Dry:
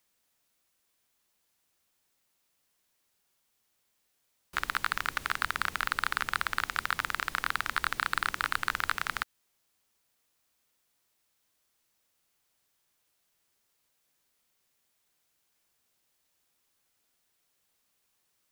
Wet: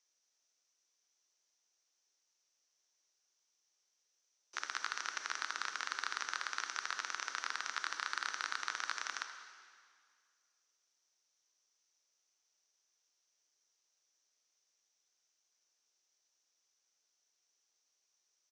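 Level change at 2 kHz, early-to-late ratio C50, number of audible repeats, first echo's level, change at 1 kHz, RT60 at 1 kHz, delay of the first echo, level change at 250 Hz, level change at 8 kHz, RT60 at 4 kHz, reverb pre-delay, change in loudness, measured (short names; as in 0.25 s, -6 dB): -9.0 dB, 6.5 dB, 1, -13.0 dB, -9.0 dB, 2.0 s, 78 ms, -16.0 dB, 0.0 dB, 1.9 s, 23 ms, -8.0 dB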